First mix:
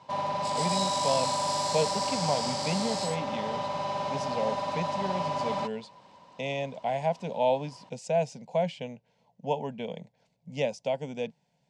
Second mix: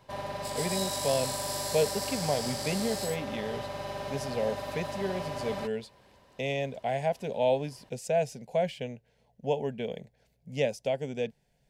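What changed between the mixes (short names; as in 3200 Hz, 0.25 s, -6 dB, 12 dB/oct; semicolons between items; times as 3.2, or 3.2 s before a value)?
background -3.5 dB; master: remove speaker cabinet 150–7600 Hz, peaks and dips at 170 Hz +6 dB, 390 Hz -7 dB, 950 Hz +9 dB, 1700 Hz -6 dB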